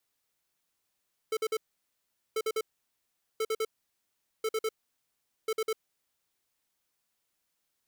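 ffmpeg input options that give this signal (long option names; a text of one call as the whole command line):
ffmpeg -f lavfi -i "aevalsrc='0.0335*(2*lt(mod(440*t,1),0.5)-1)*clip(min(mod(mod(t,1.04),0.1),0.05-mod(mod(t,1.04),0.1))/0.005,0,1)*lt(mod(t,1.04),0.3)':duration=5.2:sample_rate=44100" out.wav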